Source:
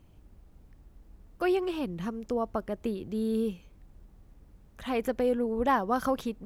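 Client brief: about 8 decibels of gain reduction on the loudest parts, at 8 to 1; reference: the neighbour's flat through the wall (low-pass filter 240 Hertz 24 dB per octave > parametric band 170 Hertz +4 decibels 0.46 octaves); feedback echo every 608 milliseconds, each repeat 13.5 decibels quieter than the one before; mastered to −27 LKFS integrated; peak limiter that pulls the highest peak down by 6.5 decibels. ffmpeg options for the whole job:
ffmpeg -i in.wav -af "acompressor=threshold=-30dB:ratio=8,alimiter=level_in=3.5dB:limit=-24dB:level=0:latency=1,volume=-3.5dB,lowpass=frequency=240:width=0.5412,lowpass=frequency=240:width=1.3066,equalizer=frequency=170:width_type=o:width=0.46:gain=4,aecho=1:1:608|1216:0.211|0.0444,volume=15dB" out.wav

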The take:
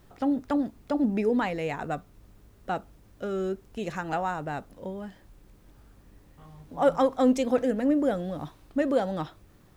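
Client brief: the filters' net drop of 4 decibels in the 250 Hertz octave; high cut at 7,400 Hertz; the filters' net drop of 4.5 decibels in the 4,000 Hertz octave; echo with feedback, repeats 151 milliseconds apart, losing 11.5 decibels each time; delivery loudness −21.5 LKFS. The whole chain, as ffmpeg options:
ffmpeg -i in.wav -af "lowpass=7400,equalizer=frequency=250:width_type=o:gain=-4.5,equalizer=frequency=4000:width_type=o:gain=-6,aecho=1:1:151|302|453:0.266|0.0718|0.0194,volume=8.5dB" out.wav

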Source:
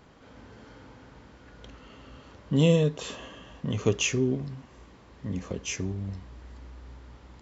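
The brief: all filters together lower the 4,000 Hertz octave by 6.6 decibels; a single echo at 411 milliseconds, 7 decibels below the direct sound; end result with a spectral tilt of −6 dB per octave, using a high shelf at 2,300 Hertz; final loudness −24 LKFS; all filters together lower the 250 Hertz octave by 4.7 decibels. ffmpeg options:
ffmpeg -i in.wav -af "equalizer=frequency=250:width_type=o:gain=-7.5,highshelf=frequency=2300:gain=-5,equalizer=frequency=4000:width_type=o:gain=-5,aecho=1:1:411:0.447,volume=7.5dB" out.wav

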